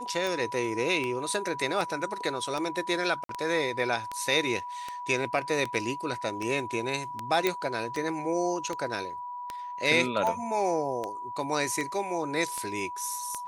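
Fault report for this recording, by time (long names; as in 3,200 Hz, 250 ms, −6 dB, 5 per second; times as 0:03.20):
scratch tick 78 rpm
whistle 980 Hz −35 dBFS
0:03.24–0:03.29: drop-out 53 ms
0:07.47: click −10 dBFS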